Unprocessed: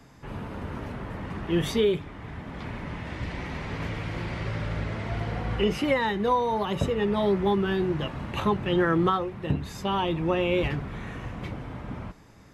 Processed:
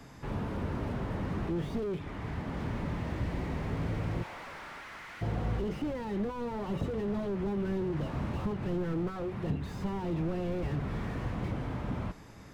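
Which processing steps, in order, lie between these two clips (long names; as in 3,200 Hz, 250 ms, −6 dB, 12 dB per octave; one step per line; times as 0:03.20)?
0:04.22–0:05.21: high-pass filter 630 Hz → 1,400 Hz 24 dB per octave
downward compressor 6 to 1, threshold −29 dBFS, peak gain reduction 10 dB
slew-rate limiting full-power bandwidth 7.9 Hz
level +2 dB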